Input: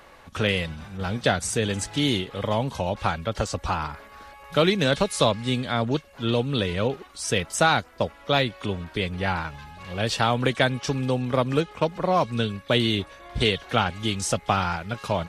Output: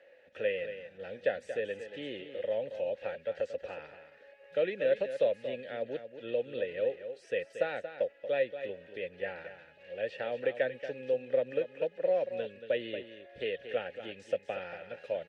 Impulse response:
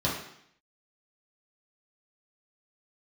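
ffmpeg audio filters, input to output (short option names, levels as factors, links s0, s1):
-filter_complex "[0:a]asplit=3[s0][s1][s2];[s0]bandpass=f=530:t=q:w=8,volume=1[s3];[s1]bandpass=f=1840:t=q:w=8,volume=0.501[s4];[s2]bandpass=f=2480:t=q:w=8,volume=0.355[s5];[s3][s4][s5]amix=inputs=3:normalize=0,acrossover=split=3000[s6][s7];[s7]acompressor=threshold=0.00112:ratio=4:attack=1:release=60[s8];[s6][s8]amix=inputs=2:normalize=0,aecho=1:1:231:0.299"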